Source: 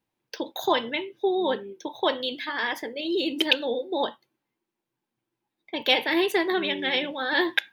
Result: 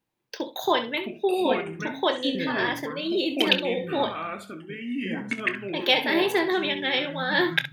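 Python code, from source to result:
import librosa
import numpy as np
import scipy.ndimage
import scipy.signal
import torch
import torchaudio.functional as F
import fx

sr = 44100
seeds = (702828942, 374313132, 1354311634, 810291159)

y = fx.echo_pitch(x, sr, ms=497, semitones=-6, count=2, db_per_echo=-6.0)
y = fx.room_early_taps(y, sr, ms=(25, 67), db=(-12.5, -12.0))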